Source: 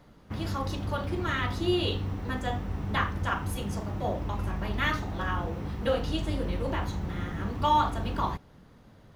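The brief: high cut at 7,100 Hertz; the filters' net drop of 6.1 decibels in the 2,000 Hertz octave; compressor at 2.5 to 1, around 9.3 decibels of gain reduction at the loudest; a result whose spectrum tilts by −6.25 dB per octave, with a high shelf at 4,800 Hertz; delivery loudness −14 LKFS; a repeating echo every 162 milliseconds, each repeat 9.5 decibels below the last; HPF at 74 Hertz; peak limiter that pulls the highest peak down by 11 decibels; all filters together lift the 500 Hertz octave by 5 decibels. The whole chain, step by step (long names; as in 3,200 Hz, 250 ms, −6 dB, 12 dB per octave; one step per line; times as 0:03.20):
high-pass filter 74 Hz
low-pass filter 7,100 Hz
parametric band 500 Hz +6.5 dB
parametric band 2,000 Hz −7.5 dB
high-shelf EQ 4,800 Hz −4.5 dB
downward compressor 2.5 to 1, threshold −32 dBFS
brickwall limiter −31.5 dBFS
repeating echo 162 ms, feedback 33%, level −9.5 dB
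level +25.5 dB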